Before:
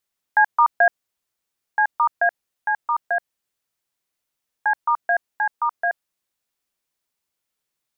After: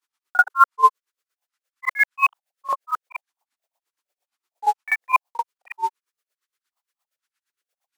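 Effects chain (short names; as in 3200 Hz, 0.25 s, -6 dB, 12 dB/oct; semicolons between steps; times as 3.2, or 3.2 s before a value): block floating point 5-bit; resonant low shelf 610 Hz +10 dB, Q 3; grains 84 ms, grains 8.6/s, spray 37 ms, pitch spread up and down by 12 st; LFO high-pass saw up 8.8 Hz 780–1600 Hz; reverse echo 40 ms -15.5 dB; gain +4 dB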